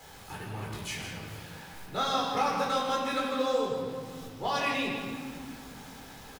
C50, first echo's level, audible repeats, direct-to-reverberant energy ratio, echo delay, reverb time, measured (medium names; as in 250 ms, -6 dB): 1.0 dB, -7.5 dB, 1, -3.5 dB, 160 ms, 2.0 s